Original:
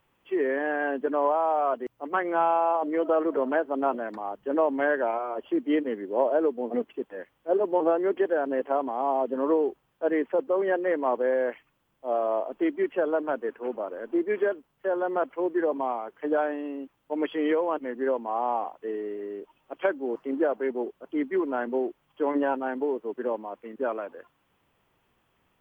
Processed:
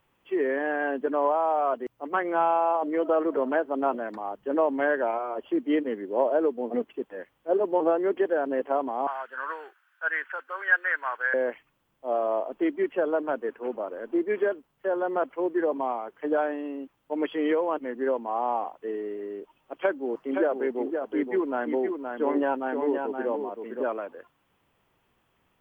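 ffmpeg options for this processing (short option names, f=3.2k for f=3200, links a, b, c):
-filter_complex "[0:a]asettb=1/sr,asplit=3[a][b][c];[a]atrim=end=9.074[d];[b]atrim=start=9.07:end=11.34,asetpts=PTS-STARTPTS,afade=t=in:d=0.004:c=qsin,afade=t=out:st=2.266:d=0.004:c=qsin,highpass=f=1.5k:t=q:w=8.7[e];[c]atrim=start=11.336[f];[d][e]acrossfade=d=0.004:c1=hsin:c2=qsin[g];[g][f]acrossfade=d=0.004:c1=qsin:c2=hsin,asettb=1/sr,asplit=3[h][i][j];[h]atrim=end=19.744[k];[i]atrim=start=19.74:end=23.83,asetpts=PTS-STARTPTS,afade=t=in:d=0.004:c=qsin,afade=t=out:st=4.086:d=0.004:c=qsin,aecho=1:1:520:0.531,atrim=end_sample=180369[l];[j]atrim=start=23.826[m];[k][l]acrossfade=d=0.004:c1=hsin:c2=qsin[n];[n][m]acrossfade=d=0.004:c1=qsin:c2=hsin"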